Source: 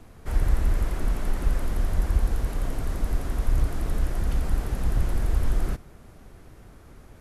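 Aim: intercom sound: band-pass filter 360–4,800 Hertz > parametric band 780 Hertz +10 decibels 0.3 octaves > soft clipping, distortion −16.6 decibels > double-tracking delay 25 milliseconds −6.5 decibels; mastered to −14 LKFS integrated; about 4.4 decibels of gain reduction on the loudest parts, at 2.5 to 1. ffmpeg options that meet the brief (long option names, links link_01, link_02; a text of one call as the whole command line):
ffmpeg -i in.wav -filter_complex "[0:a]acompressor=threshold=-22dB:ratio=2.5,highpass=360,lowpass=4800,equalizer=frequency=780:width_type=o:width=0.3:gain=10,asoftclip=threshold=-35dB,asplit=2[link_01][link_02];[link_02]adelay=25,volume=-6.5dB[link_03];[link_01][link_03]amix=inputs=2:normalize=0,volume=28dB" out.wav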